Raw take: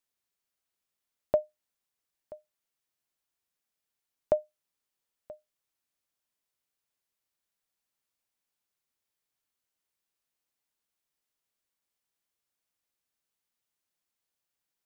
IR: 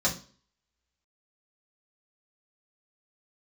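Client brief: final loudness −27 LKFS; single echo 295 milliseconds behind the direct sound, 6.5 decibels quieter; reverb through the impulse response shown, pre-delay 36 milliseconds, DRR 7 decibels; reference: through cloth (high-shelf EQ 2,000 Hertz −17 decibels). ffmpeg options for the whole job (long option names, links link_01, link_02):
-filter_complex "[0:a]aecho=1:1:295:0.473,asplit=2[link_01][link_02];[1:a]atrim=start_sample=2205,adelay=36[link_03];[link_02][link_03]afir=irnorm=-1:irlink=0,volume=-17dB[link_04];[link_01][link_04]amix=inputs=2:normalize=0,highshelf=frequency=2000:gain=-17,volume=6dB"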